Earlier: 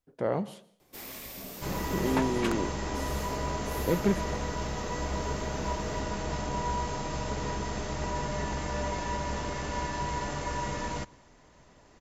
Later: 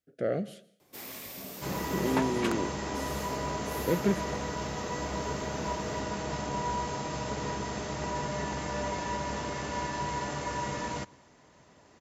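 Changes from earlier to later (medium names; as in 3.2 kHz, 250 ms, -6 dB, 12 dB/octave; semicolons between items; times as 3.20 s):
speech: add Chebyshev band-stop 650–1400 Hz, order 2; master: add high-pass 92 Hz 12 dB/octave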